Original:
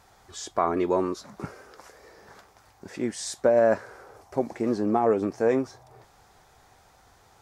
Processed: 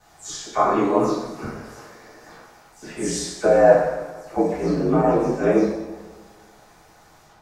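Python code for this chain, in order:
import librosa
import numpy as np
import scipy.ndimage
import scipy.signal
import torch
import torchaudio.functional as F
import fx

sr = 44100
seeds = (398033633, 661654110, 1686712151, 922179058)

y = fx.spec_delay(x, sr, highs='early', ms=159)
y = y * np.sin(2.0 * np.pi * 57.0 * np.arange(len(y)) / sr)
y = fx.rev_double_slope(y, sr, seeds[0], early_s=0.88, late_s=2.3, knee_db=-18, drr_db=-10.0)
y = y * 10.0 ** (-1.0 / 20.0)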